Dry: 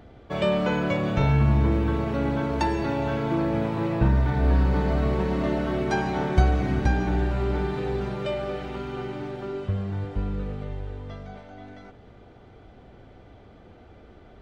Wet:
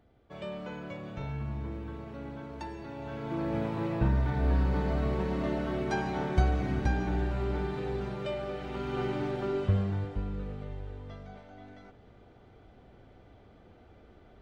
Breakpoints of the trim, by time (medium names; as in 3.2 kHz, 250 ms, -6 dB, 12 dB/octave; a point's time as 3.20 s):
2.89 s -16 dB
3.55 s -6 dB
8.57 s -6 dB
9.03 s +1 dB
9.76 s +1 dB
10.23 s -6.5 dB